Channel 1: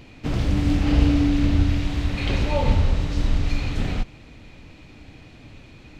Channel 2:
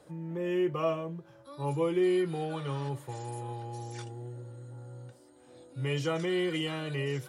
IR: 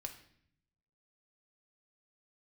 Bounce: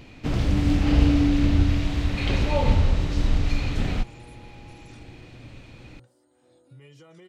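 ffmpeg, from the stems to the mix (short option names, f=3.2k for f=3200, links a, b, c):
-filter_complex "[0:a]volume=-0.5dB[a];[1:a]acompressor=threshold=-38dB:ratio=6,alimiter=level_in=11dB:limit=-24dB:level=0:latency=1:release=91,volume=-11dB,adelay=950,volume=-6.5dB[b];[a][b]amix=inputs=2:normalize=0"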